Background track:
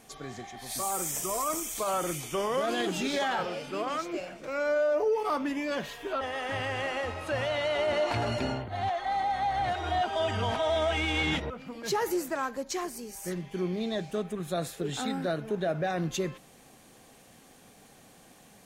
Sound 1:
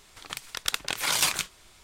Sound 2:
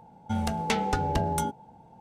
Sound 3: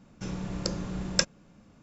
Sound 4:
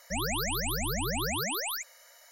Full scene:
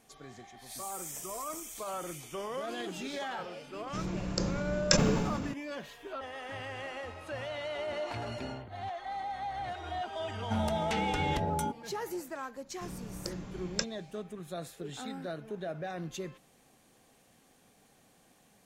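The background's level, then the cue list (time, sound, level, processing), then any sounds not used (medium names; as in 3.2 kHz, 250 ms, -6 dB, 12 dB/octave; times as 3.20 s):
background track -8.5 dB
3.72 s: add 3 -2 dB + decay stretcher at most 30 dB/s
10.21 s: add 2 -3 dB + peak limiter -18.5 dBFS
12.60 s: add 3 -8.5 dB
not used: 1, 4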